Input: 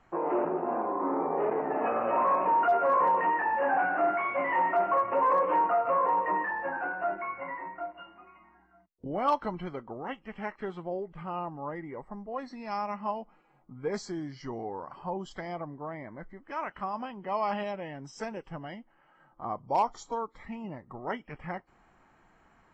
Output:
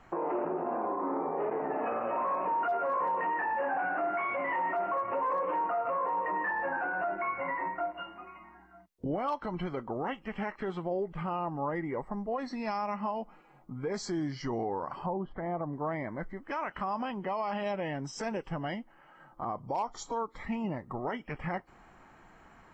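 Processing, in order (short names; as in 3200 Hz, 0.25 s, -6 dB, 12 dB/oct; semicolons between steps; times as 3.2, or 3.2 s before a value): compressor 6:1, threshold -33 dBFS, peak gain reduction 11.5 dB; 15.06–15.73 Bessel low-pass 1200 Hz, order 4; limiter -30.5 dBFS, peak gain reduction 6.5 dB; gain +6 dB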